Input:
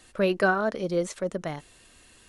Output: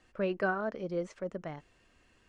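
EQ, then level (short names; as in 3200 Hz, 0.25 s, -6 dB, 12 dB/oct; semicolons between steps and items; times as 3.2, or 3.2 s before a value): air absorption 120 m; bell 3800 Hz -7.5 dB 0.41 oct; high shelf 9900 Hz -3 dB; -7.5 dB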